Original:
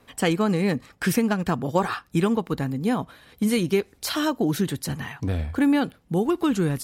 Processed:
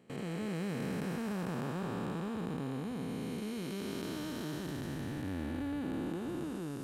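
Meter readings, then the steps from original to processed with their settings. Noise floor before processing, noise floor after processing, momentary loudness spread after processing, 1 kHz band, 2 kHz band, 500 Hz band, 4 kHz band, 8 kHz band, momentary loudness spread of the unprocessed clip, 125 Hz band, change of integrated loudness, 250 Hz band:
-59 dBFS, -40 dBFS, 3 LU, -15.5 dB, -15.0 dB, -15.0 dB, -14.5 dB, -16.5 dB, 7 LU, -12.5 dB, -14.0 dB, -13.5 dB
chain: spectral blur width 1000 ms; gate with hold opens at -25 dBFS; trim -7.5 dB

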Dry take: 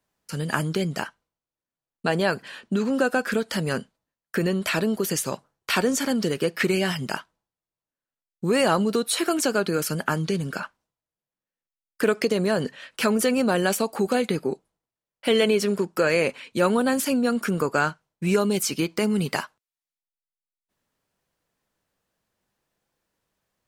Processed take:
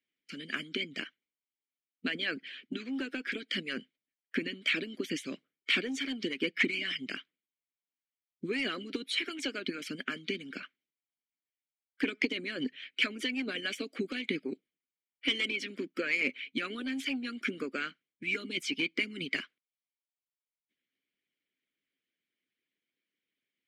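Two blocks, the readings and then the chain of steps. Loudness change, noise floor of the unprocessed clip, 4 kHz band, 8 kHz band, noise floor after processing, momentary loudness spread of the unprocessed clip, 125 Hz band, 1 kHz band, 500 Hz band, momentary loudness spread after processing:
-10.0 dB, under -85 dBFS, -3.0 dB, -19.0 dB, under -85 dBFS, 10 LU, -21.0 dB, -19.0 dB, -17.0 dB, 12 LU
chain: vowel filter i; overdrive pedal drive 11 dB, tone 4.7 kHz, clips at -19 dBFS; harmonic-percussive split harmonic -15 dB; trim +7 dB

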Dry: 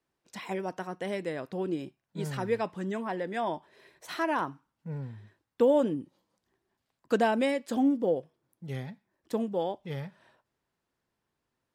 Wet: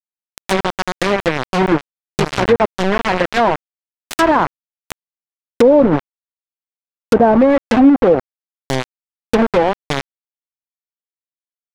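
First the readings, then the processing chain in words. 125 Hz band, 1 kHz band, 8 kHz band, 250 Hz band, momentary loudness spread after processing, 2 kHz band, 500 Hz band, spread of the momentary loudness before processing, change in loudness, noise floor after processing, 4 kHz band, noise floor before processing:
+13.0 dB, +16.5 dB, no reading, +15.5 dB, 12 LU, +16.5 dB, +15.0 dB, 17 LU, +15.5 dB, under -85 dBFS, +18.0 dB, -84 dBFS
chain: bit crusher 5-bit; low-pass that closes with the level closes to 870 Hz, closed at -22.5 dBFS; loudness maximiser +17.5 dB; trim -1 dB

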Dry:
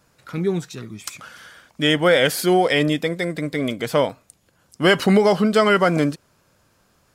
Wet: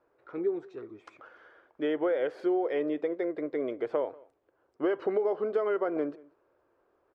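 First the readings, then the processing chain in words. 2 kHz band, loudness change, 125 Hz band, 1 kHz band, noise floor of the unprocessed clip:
-20.5 dB, -12.0 dB, -29.5 dB, -15.5 dB, -62 dBFS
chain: low-pass 1.3 kHz 12 dB/octave; resonant low shelf 260 Hz -12 dB, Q 3; compression 4:1, threshold -18 dBFS, peak gain reduction 10 dB; echo from a far wall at 32 m, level -23 dB; trim -8 dB

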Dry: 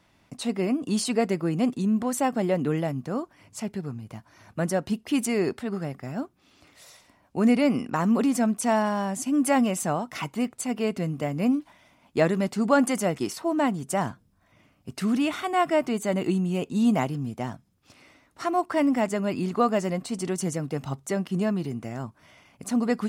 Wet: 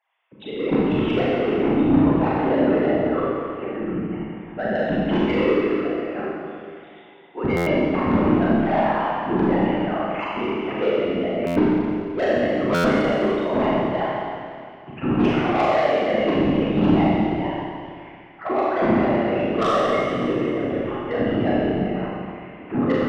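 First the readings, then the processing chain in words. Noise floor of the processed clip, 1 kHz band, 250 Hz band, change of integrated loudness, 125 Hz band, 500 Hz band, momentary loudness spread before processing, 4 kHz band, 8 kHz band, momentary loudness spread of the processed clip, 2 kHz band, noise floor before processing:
-44 dBFS, +5.0 dB, +4.0 dB, +5.0 dB, +4.5 dB, +7.0 dB, 12 LU, +4.0 dB, under -15 dB, 11 LU, +6.0 dB, -64 dBFS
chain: formants replaced by sine waves; level rider gain up to 11 dB; whisper effect; saturation -14.5 dBFS, distortion -6 dB; Schroeder reverb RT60 2.3 s, combs from 29 ms, DRR -7 dB; buffer glitch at 7.56/11.46/12.74 s, samples 512, times 8; trim -5.5 dB

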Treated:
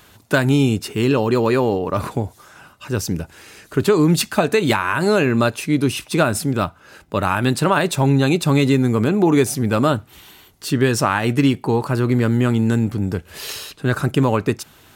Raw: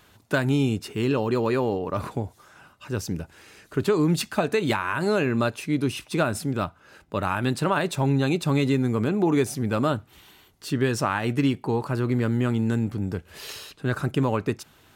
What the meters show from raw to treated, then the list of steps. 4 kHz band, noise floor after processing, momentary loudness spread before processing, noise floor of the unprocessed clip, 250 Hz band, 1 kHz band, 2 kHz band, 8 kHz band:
+7.5 dB, -50 dBFS, 10 LU, -57 dBFS, +6.5 dB, +6.5 dB, +7.0 dB, +9.5 dB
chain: treble shelf 6.2 kHz +4.5 dB; trim +6.5 dB

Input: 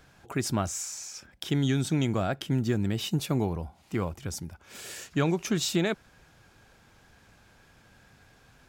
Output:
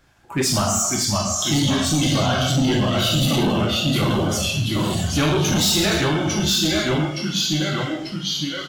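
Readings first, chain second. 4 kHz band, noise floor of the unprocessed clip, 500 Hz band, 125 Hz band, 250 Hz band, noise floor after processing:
+17.5 dB, -60 dBFS, +9.5 dB, +9.5 dB, +9.5 dB, -32 dBFS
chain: reverb removal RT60 1.6 s; dynamic bell 4.4 kHz, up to +6 dB, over -50 dBFS, Q 0.93; on a send: feedback delay 1082 ms, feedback 48%, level -17.5 dB; on the sum: ever faster or slower copies 525 ms, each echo -1 st, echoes 3; gated-style reverb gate 430 ms falling, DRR -3.5 dB; overload inside the chain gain 22.5 dB; spectral noise reduction 10 dB; band-stop 460 Hz, Q 12; trim +7.5 dB

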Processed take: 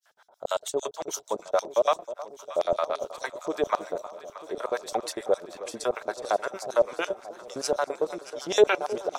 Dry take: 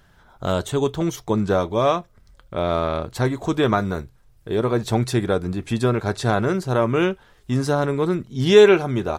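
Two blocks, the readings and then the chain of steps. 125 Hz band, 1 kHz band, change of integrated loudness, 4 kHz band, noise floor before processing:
-30.0 dB, -4.5 dB, -8.0 dB, -7.0 dB, -55 dBFS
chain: LFO high-pass square 8.8 Hz 590–5600 Hz; harmonic tremolo 6.6 Hz, depth 100%, crossover 730 Hz; echo whose repeats swap between lows and highs 314 ms, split 1 kHz, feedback 86%, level -14 dB; trim -1.5 dB

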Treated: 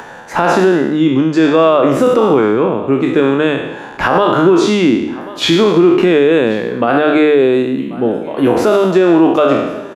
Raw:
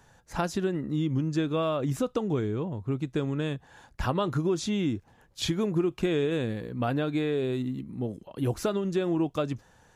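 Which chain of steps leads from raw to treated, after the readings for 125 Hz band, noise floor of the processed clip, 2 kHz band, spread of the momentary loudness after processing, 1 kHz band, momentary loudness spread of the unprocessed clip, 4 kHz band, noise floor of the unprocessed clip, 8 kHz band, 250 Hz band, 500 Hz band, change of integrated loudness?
+7.5 dB, -29 dBFS, +20.5 dB, 8 LU, +20.0 dB, 7 LU, +16.5 dB, -61 dBFS, +11.0 dB, +17.0 dB, +19.5 dB, +17.5 dB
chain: spectral sustain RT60 0.94 s; upward compressor, threshold -40 dBFS; three-band isolator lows -22 dB, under 210 Hz, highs -14 dB, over 3 kHz; hum notches 50/100/150/200/250/300 Hz; on a send: delay 1086 ms -23 dB; on the sum: loudness maximiser +20.5 dB; trim -1 dB

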